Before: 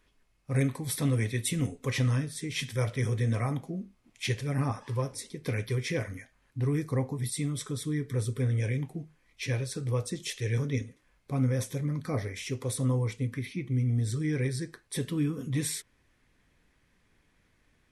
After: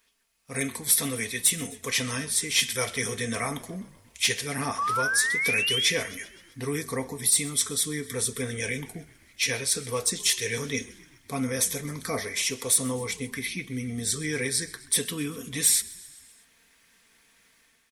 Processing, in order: tilt +3.5 dB/oct; comb 4.4 ms, depth 47%; AGC gain up to 8 dB; soft clip -9 dBFS, distortion -19 dB; painted sound rise, 4.78–5.9, 1100–3600 Hz -24 dBFS; frequency-shifting echo 0.129 s, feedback 63%, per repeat -41 Hz, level -20.5 dB; gain -2.5 dB

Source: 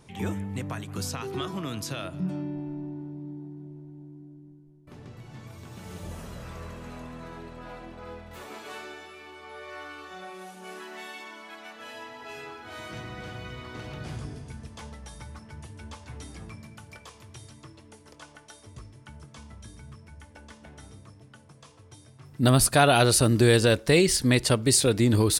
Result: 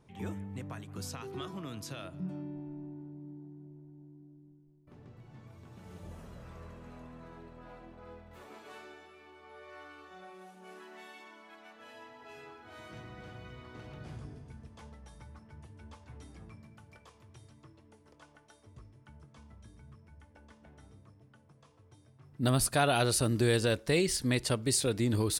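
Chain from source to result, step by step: mismatched tape noise reduction decoder only; gain -8 dB

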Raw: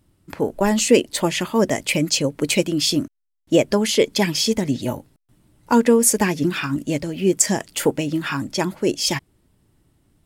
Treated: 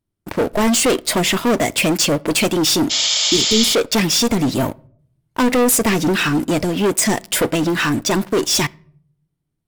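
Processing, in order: wide varispeed 1.06×; sample leveller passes 5; on a send at -21.5 dB: reverb RT60 0.60 s, pre-delay 3 ms; on the sum: spectral repair 2.93–3.67, 470–7700 Hz after; gain -8.5 dB

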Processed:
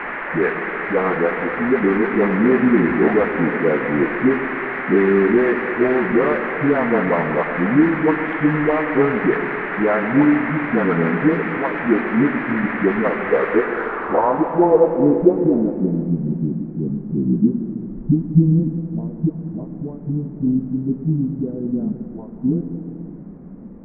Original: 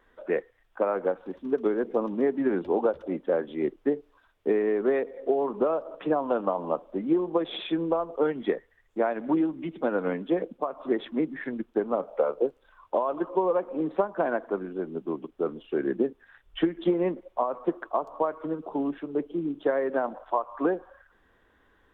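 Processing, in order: Wiener smoothing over 41 samples; tone controls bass +10 dB, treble +8 dB; notch 610 Hz, Q 12; dispersion highs, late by 91 ms, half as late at 330 Hz; varispeed -8%; band noise 180–2000 Hz -39 dBFS; low-pass sweep 2000 Hz -> 190 Hz, 13.54–16.06; thin delay 0.422 s, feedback 45%, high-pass 3100 Hz, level -4 dB; reverb RT60 2.3 s, pre-delay 93 ms, DRR 7.5 dB; gain +7.5 dB

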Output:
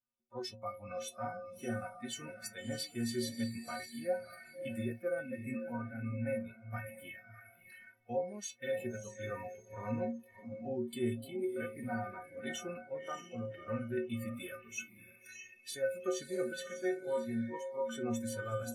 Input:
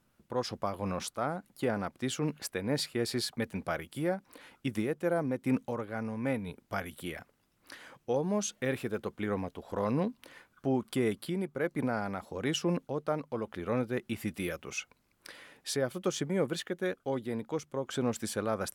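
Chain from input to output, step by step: metallic resonator 110 Hz, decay 0.63 s, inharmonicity 0.03; diffused feedback echo 0.619 s, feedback 40%, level -7 dB; spectral noise reduction 21 dB; gain +7 dB

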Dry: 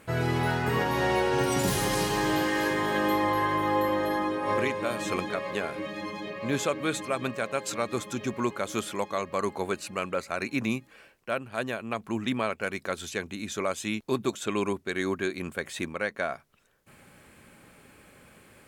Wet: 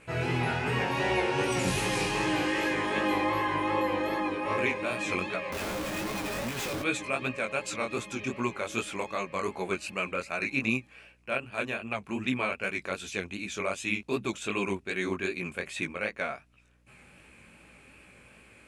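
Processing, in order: steep low-pass 11000 Hz 36 dB/oct; bell 2500 Hz +11 dB 0.33 oct; 5.52–6.82 Schmitt trigger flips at -37 dBFS; chorus 2.6 Hz, delay 15.5 ms, depth 7.3 ms; hum 60 Hz, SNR 34 dB

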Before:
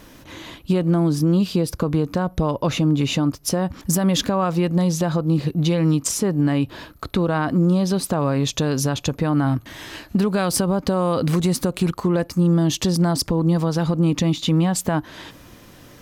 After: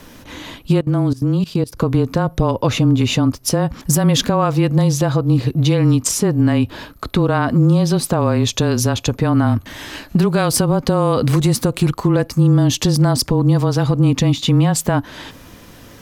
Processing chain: frequency shift -20 Hz; 0.79–1.77 level quantiser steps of 20 dB; gain +4.5 dB

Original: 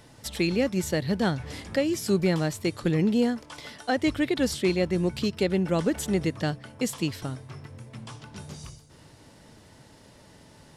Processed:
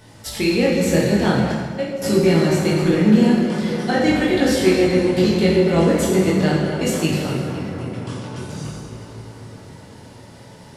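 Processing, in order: darkening echo 0.257 s, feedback 77%, low-pass 3500 Hz, level -8 dB; 1.52–2.02 gate -20 dBFS, range -23 dB; chorus 0.44 Hz, delay 18 ms, depth 6.2 ms; plate-style reverb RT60 1.5 s, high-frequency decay 0.75×, DRR -3 dB; gain +6.5 dB

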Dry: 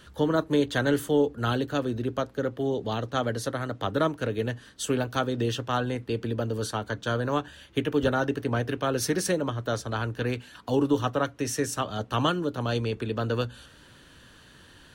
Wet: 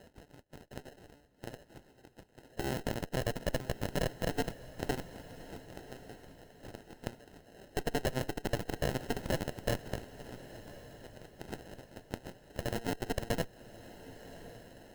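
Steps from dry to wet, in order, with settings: compressor 4:1, threshold -39 dBFS, peak gain reduction 17.5 dB; LFO high-pass square 0.2 Hz 470–2300 Hz; sample-and-hold 38×; added harmonics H 3 -17 dB, 4 -6 dB, 5 -15 dB, 7 -10 dB, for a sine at -24 dBFS; on a send: diffused feedback echo 1.105 s, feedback 42%, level -15.5 dB

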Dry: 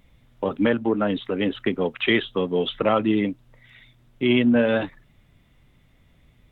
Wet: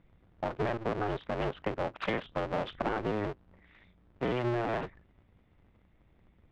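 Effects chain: cycle switcher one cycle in 2, inverted; Bessel low-pass 1800 Hz, order 2; compressor, threshold -21 dBFS, peak gain reduction 6.5 dB; gain -6.5 dB

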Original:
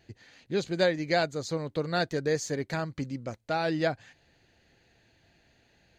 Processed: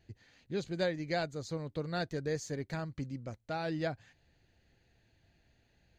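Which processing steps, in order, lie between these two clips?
low shelf 130 Hz +11 dB; gain -8.5 dB

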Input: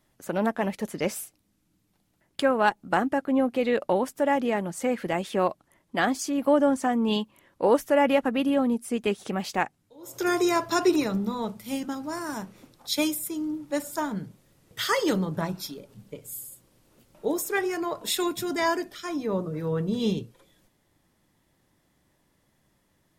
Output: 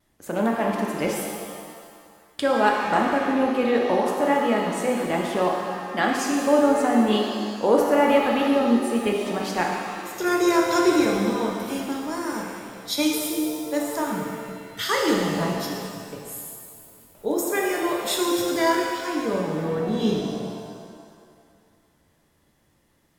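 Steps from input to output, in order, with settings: vibrato 0.53 Hz 14 cents; shimmer reverb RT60 2 s, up +7 st, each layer -8 dB, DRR -0.5 dB

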